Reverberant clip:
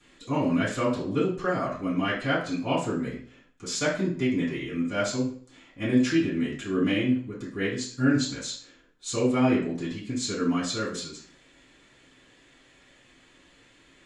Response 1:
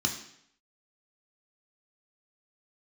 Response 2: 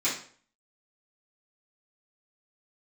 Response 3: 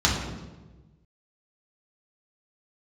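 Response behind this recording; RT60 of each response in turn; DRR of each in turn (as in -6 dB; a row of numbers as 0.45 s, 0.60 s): 2; 0.70 s, 0.50 s, 1.2 s; 1.5 dB, -13.0 dB, -4.5 dB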